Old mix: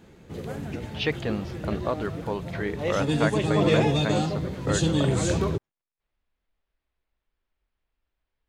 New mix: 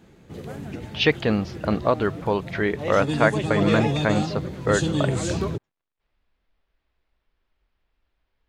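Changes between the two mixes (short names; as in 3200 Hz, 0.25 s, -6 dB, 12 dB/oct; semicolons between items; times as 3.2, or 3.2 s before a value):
speech +7.5 dB; reverb: off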